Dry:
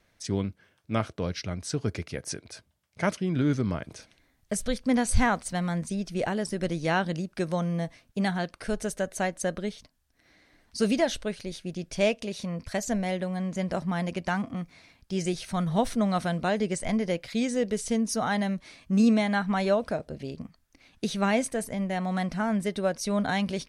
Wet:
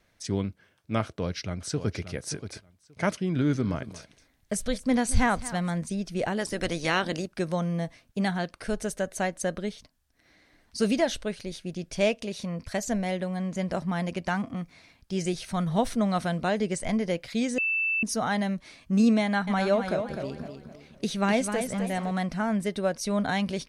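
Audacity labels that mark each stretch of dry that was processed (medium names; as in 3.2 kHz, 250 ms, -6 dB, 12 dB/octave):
1.020000	1.990000	echo throw 580 ms, feedback 15%, level -10.5 dB
3.290000	5.770000	delay 224 ms -16.5 dB
6.380000	7.260000	spectral peaks clipped ceiling under each frame's peak by 13 dB
17.580000	18.030000	bleep 2.65 kHz -23.5 dBFS
19.220000	22.110000	modulated delay 255 ms, feedback 39%, depth 102 cents, level -7.5 dB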